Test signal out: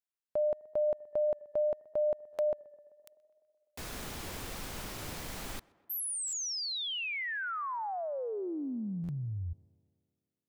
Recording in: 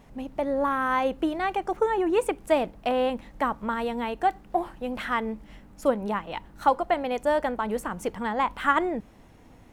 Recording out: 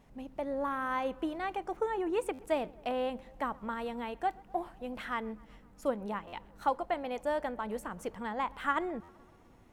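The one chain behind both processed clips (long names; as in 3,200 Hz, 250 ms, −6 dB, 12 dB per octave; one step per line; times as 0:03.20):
tape delay 127 ms, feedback 76%, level −23 dB, low-pass 2,300 Hz
buffer that repeats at 0:02.33/0:06.27/0:09.03, samples 512, times 4
level −8.5 dB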